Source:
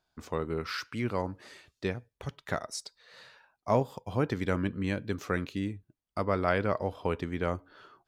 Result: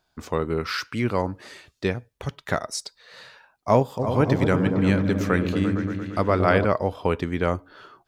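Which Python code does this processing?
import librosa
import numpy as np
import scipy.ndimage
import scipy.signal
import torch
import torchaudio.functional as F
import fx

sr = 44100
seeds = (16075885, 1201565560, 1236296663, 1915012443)

y = fx.echo_opening(x, sr, ms=115, hz=400, octaves=1, feedback_pct=70, wet_db=-3, at=(3.98, 6.64), fade=0.02)
y = F.gain(torch.from_numpy(y), 7.5).numpy()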